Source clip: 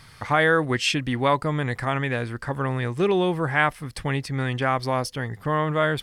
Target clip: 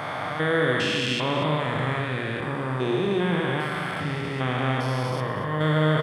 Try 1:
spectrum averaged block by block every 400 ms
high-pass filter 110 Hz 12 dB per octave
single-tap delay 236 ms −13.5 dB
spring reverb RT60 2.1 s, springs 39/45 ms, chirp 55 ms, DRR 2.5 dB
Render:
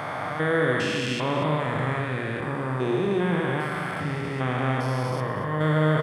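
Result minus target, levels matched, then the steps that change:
4,000 Hz band −5.0 dB
add after high-pass filter: dynamic equaliser 3,400 Hz, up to +6 dB, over −49 dBFS, Q 1.6

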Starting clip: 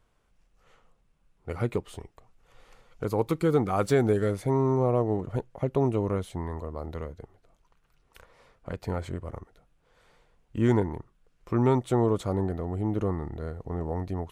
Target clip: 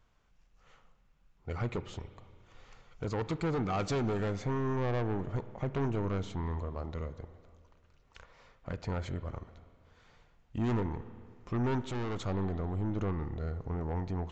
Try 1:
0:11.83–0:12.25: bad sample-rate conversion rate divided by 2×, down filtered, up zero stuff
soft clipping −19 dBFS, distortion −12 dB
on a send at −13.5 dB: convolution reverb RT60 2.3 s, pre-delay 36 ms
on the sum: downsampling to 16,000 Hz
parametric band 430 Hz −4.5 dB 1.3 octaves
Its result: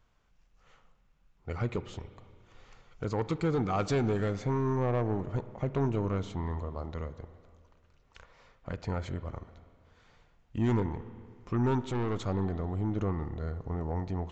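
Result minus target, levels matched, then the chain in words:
soft clipping: distortion −5 dB
0:11.83–0:12.25: bad sample-rate conversion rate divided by 2×, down filtered, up zero stuff
soft clipping −25 dBFS, distortion −7 dB
on a send at −13.5 dB: convolution reverb RT60 2.3 s, pre-delay 36 ms
on the sum: downsampling to 16,000 Hz
parametric band 430 Hz −4.5 dB 1.3 octaves

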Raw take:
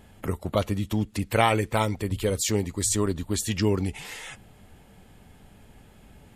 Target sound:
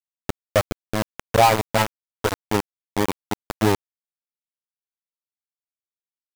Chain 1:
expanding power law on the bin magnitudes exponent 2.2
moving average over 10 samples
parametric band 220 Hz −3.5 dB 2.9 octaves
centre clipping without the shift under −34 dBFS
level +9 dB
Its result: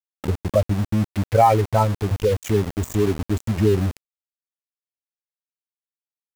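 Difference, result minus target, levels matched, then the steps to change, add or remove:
centre clipping without the shift: distortion −15 dB
change: centre clipping without the shift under −22.5 dBFS

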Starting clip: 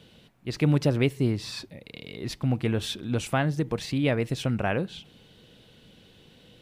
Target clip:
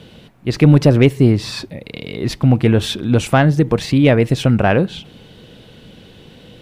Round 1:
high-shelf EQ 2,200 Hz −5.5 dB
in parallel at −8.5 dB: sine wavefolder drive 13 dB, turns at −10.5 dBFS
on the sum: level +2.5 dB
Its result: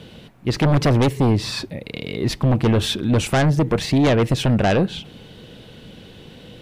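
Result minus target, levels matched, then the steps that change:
sine wavefolder: distortion +21 dB
change: sine wavefolder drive 13 dB, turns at 0.5 dBFS

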